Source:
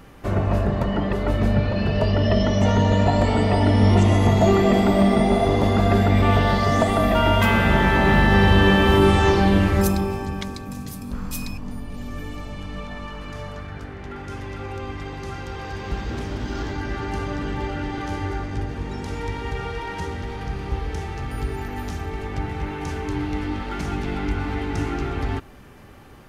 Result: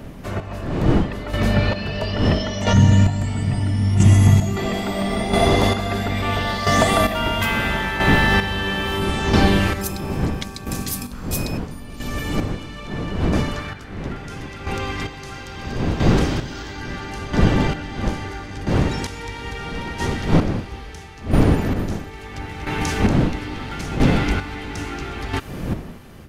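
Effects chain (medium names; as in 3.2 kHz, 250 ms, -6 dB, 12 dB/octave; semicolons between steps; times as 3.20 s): wind noise 230 Hz -20 dBFS; 2.73–4.57 s: graphic EQ 125/500/1000/2000/4000/8000 Hz +11/-10/-6/-3/-10/+3 dB; square tremolo 0.75 Hz, depth 60%, duty 30%; tilt shelf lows -5.5 dB, about 1.4 kHz; level rider gain up to 9.5 dB; trim -1 dB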